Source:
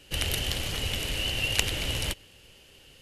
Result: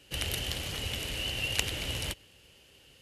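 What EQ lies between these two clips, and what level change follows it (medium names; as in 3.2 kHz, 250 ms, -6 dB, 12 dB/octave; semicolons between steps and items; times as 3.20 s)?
high-pass 43 Hz; -4.0 dB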